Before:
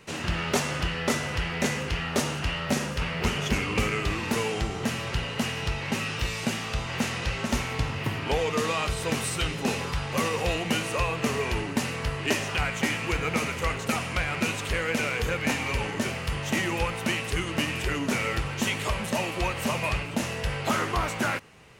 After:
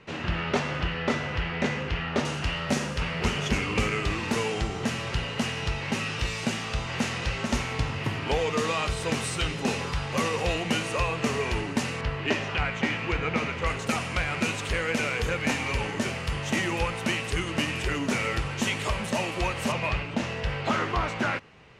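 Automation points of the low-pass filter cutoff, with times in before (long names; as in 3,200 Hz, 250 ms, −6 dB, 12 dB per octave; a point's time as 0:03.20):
3,500 Hz
from 0:02.25 8,900 Hz
from 0:12.01 3,800 Hz
from 0:13.66 9,600 Hz
from 0:19.72 4,500 Hz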